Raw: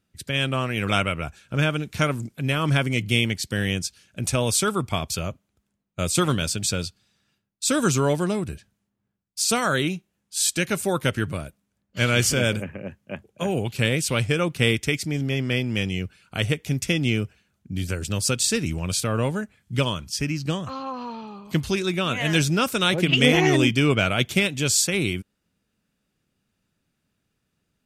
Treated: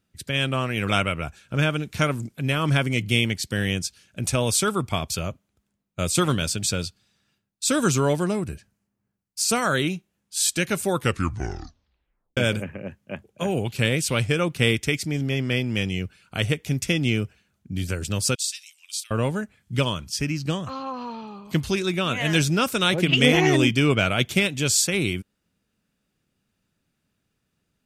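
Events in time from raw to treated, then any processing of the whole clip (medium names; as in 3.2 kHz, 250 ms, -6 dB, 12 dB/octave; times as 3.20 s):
8.23–9.66 s: peaking EQ 3.5 kHz -6.5 dB 0.36 oct
10.95 s: tape stop 1.42 s
18.35–19.11 s: ladder high-pass 2.7 kHz, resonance 20%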